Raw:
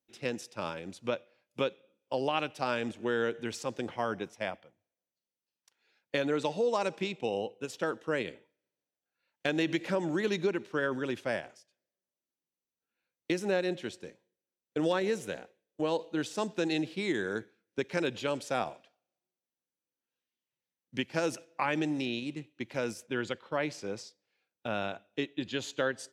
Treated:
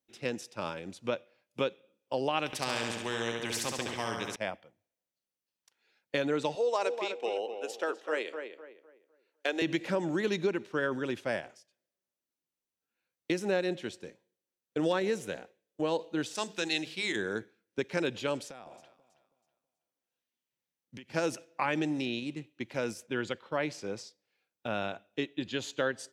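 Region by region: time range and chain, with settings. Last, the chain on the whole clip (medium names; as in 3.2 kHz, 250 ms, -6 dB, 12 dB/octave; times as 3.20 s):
2.46–4.36 s: band-stop 1.4 kHz, Q 6.9 + feedback delay 69 ms, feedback 53%, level -6 dB + spectrum-flattening compressor 2:1
6.55–9.62 s: high-pass 350 Hz 24 dB/octave + filtered feedback delay 252 ms, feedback 33%, low-pass 2.2 kHz, level -7 dB
16.35–17.16 s: tilt shelf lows -7 dB, about 1.1 kHz + hum notches 50/100/150/200/250/300/350/400/450 Hz
18.45–21.13 s: compression 16:1, threshold -42 dBFS + echo whose repeats swap between lows and highs 162 ms, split 1 kHz, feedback 54%, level -10 dB
whole clip: none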